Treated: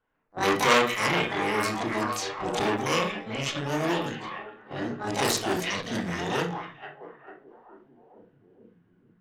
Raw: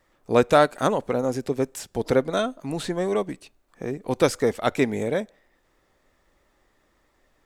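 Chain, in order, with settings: harmoniser +12 st -5 dB; spectral gain 4.49–5.01, 360–5300 Hz -9 dB; varispeed -19%; delay with a stepping band-pass 0.446 s, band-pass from 2600 Hz, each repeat -0.7 oct, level -5 dB; transient shaper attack -4 dB, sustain +1 dB; low-pass opened by the level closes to 1300 Hz, open at -20 dBFS; tilt shelf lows -7 dB, about 1200 Hz; gate -39 dBFS, range -10 dB; on a send at -1 dB: reverb RT60 0.40 s, pre-delay 19 ms; on the sum: core saturation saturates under 2500 Hz

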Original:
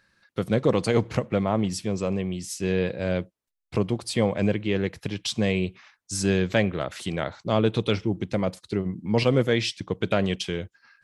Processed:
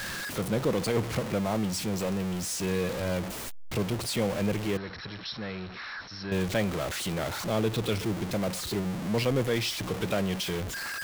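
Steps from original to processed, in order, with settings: zero-crossing step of -21.5 dBFS; 4.77–6.32 rippled Chebyshev low-pass 5600 Hz, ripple 9 dB; gain -8 dB

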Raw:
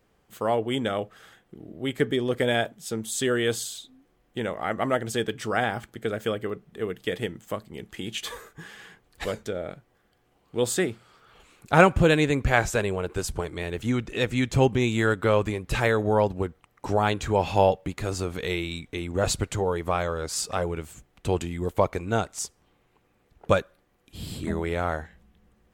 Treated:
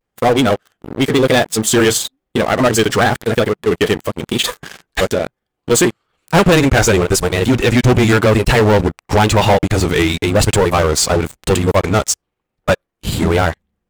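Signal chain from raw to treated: granular stretch 0.54×, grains 89 ms; vibrato 0.98 Hz 90 cents; sample leveller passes 5

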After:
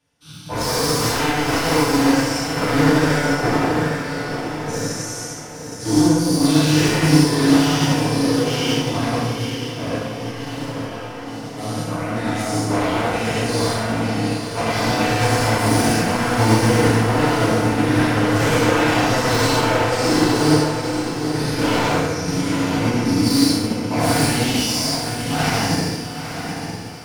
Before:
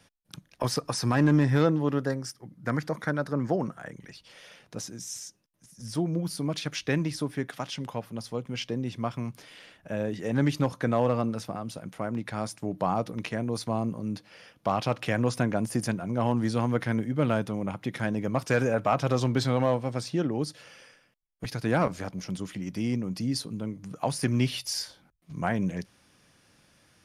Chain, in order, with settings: spectral dilation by 0.24 s; wavefolder -19.5 dBFS; 9.98–11.57 resonator 270 Hz, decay 0.73 s, mix 70%; on a send: diffused feedback echo 0.888 s, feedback 48%, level -4.5 dB; on the sum: FDN reverb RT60 1.3 s, low-frequency decay 1.05×, high-frequency decay 0.8×, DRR -8.5 dB; upward expander 1.5:1, over -45 dBFS; gain -1 dB

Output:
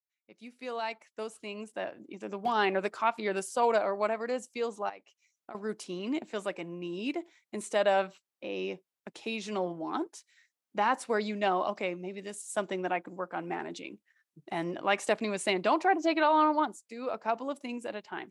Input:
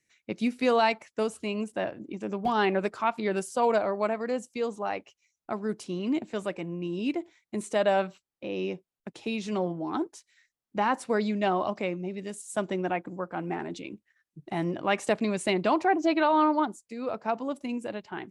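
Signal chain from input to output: opening faded in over 2.75 s; HPF 420 Hz 6 dB/oct; 4.89–5.55 compressor 6:1, threshold -44 dBFS, peak gain reduction 15 dB

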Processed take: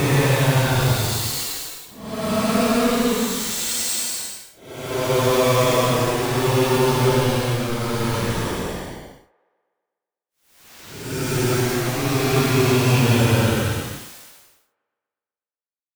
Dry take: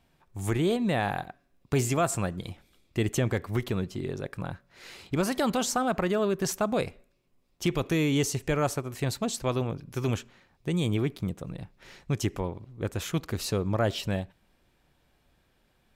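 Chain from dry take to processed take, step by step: bit-crush 5-bit; Paulstretch 12×, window 0.10 s, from 9.02; band-limited delay 0.123 s, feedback 62%, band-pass 940 Hz, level -21 dB; gain +8.5 dB

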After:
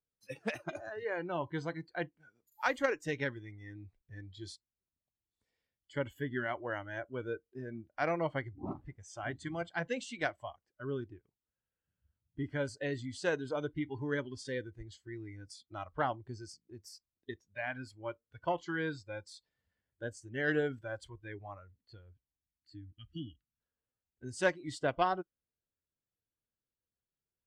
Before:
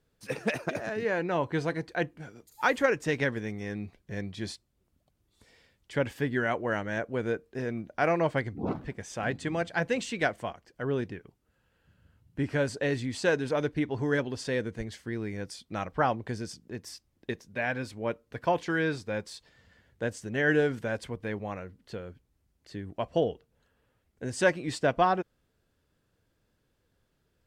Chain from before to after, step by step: spectral gain 22.46–23.6, 330–1200 Hz -28 dB; added harmonics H 3 -18 dB, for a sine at -10.5 dBFS; spectral noise reduction 17 dB; gain -3.5 dB

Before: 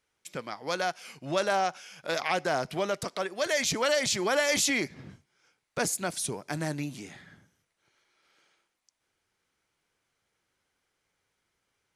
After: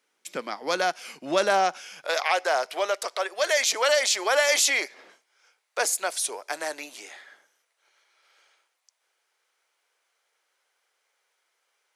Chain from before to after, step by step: HPF 220 Hz 24 dB/oct, from 2.04 s 480 Hz; gain +5 dB

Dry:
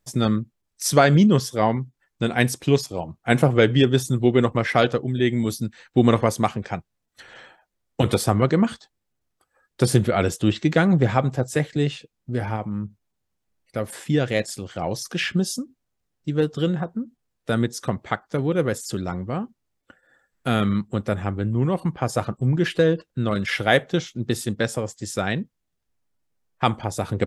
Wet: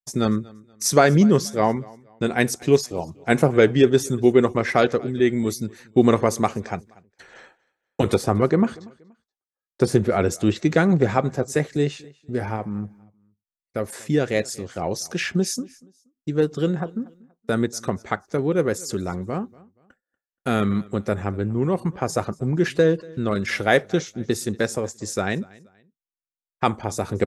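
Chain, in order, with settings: 8.16–10.31 high shelf 4000 Hz -9.5 dB; expander -43 dBFS; thirty-one-band EQ 125 Hz -6 dB, 400 Hz +5 dB, 3150 Hz -7 dB, 6300 Hz +5 dB; feedback echo 0.238 s, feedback 31%, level -23.5 dB

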